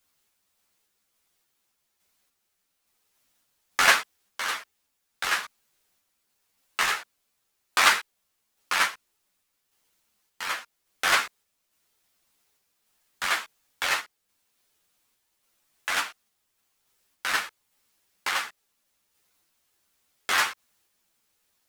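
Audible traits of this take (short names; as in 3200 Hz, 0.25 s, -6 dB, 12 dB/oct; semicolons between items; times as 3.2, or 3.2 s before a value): a quantiser's noise floor 12-bit, dither triangular; random-step tremolo; a shimmering, thickened sound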